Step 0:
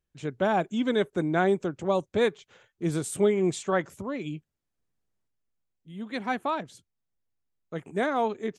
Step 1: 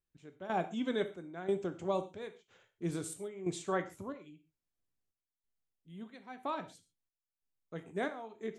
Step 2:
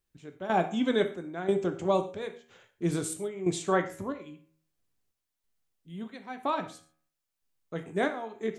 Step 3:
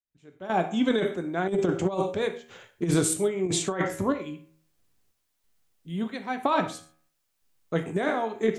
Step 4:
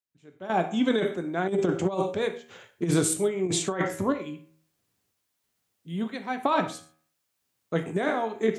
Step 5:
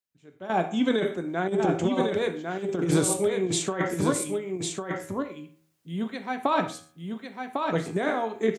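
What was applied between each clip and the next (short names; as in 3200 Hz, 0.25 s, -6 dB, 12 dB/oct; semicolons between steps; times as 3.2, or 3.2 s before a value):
step gate "xx....xxxxxx" 182 bpm -12 dB; non-linear reverb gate 0.16 s falling, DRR 8.5 dB; gain -8.5 dB
de-hum 79.05 Hz, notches 35; gain +8 dB
opening faded in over 1.52 s; negative-ratio compressor -29 dBFS, ratio -0.5; gain +7 dB
HPF 83 Hz
echo 1.101 s -4.5 dB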